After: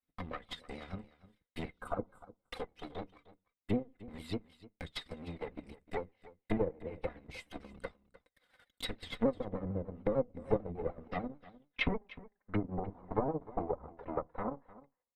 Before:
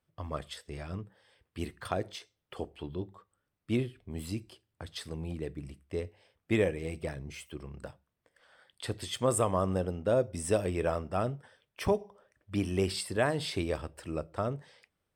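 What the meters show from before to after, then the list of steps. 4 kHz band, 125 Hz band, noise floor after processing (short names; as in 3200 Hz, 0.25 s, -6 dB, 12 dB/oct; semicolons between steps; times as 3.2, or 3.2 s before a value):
-6.0 dB, -7.5 dB, under -85 dBFS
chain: minimum comb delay 4 ms; spectral repair 1.76–2.25, 1600–7200 Hz after; treble ducked by the level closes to 570 Hz, closed at -32 dBFS; bell 6300 Hz -7.5 dB 0.55 oct; transient shaper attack +6 dB, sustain -9 dB; low-pass sweep 13000 Hz -> 1000 Hz, 10.16–12.89; small resonant body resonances 2100/3800 Hz, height 16 dB, ringing for 55 ms; gate -59 dBFS, range -10 dB; on a send: echo 0.304 s -18.5 dB; on the sum: shaped vibrato saw down 6.7 Hz, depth 100 cents; gain -2 dB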